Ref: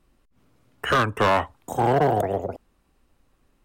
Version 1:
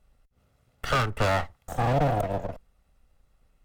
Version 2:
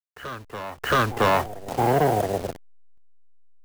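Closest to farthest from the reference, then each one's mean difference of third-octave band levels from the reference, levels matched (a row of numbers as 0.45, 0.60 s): 1, 2; 4.0, 5.5 dB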